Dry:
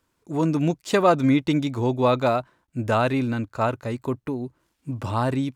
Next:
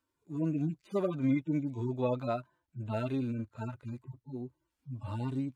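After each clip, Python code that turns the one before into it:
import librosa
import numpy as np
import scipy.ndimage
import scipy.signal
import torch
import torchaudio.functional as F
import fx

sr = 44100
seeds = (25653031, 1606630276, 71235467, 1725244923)

y = fx.hpss_only(x, sr, part='harmonic')
y = y * 10.0 ** (-9.0 / 20.0)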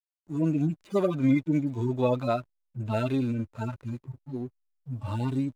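y = fx.high_shelf(x, sr, hz=3900.0, db=6.0)
y = fx.backlash(y, sr, play_db=-54.5)
y = y * 10.0 ** (6.0 / 20.0)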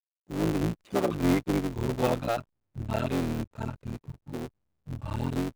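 y = fx.cycle_switch(x, sr, every=3, mode='muted')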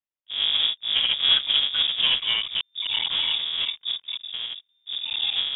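y = fx.reverse_delay(x, sr, ms=261, wet_db=-2.0)
y = fx.wow_flutter(y, sr, seeds[0], rate_hz=2.1, depth_cents=29.0)
y = fx.freq_invert(y, sr, carrier_hz=3600)
y = y * 10.0 ** (2.5 / 20.0)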